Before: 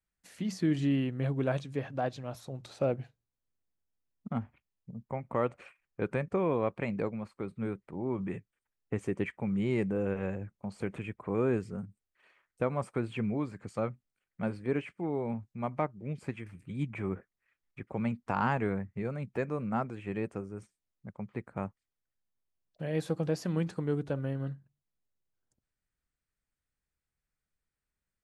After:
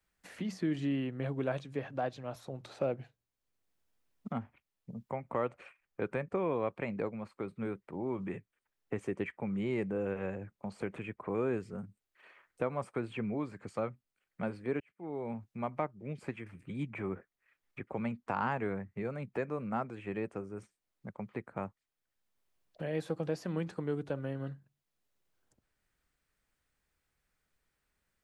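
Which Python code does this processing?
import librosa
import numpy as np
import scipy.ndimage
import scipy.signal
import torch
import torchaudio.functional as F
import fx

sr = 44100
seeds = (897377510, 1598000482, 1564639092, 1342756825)

y = fx.edit(x, sr, fx.fade_in_span(start_s=14.8, length_s=0.68), tone=tone)
y = fx.bass_treble(y, sr, bass_db=-5, treble_db=-4)
y = fx.band_squash(y, sr, depth_pct=40)
y = F.gain(torch.from_numpy(y), -1.5).numpy()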